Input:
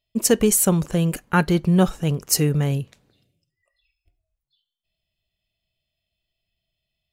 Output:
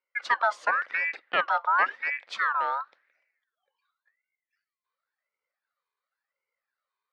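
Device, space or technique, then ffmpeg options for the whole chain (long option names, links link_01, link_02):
voice changer toy: -af "aeval=exprs='val(0)*sin(2*PI*1600*n/s+1600*0.35/0.93*sin(2*PI*0.93*n/s))':channel_layout=same,highpass=410,equalizer=frequency=540:width_type=q:width=4:gain=9,equalizer=frequency=1300:width_type=q:width=4:gain=3,equalizer=frequency=3100:width_type=q:width=4:gain=-3,lowpass=frequency=3800:width=0.5412,lowpass=frequency=3800:width=1.3066,volume=-5.5dB"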